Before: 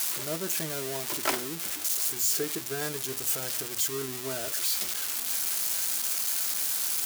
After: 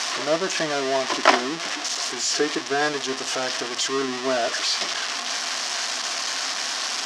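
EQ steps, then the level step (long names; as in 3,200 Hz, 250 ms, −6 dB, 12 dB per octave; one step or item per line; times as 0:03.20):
loudspeaker in its box 260–5,800 Hz, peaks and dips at 260 Hz +6 dB, 700 Hz +9 dB, 1,100 Hz +8 dB, 1,800 Hz +6 dB, 3,000 Hz +3 dB, 5,500 Hz +4 dB
+8.5 dB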